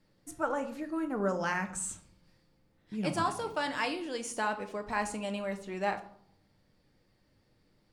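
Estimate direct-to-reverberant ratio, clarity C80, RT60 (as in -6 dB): 6.0 dB, 16.0 dB, 0.65 s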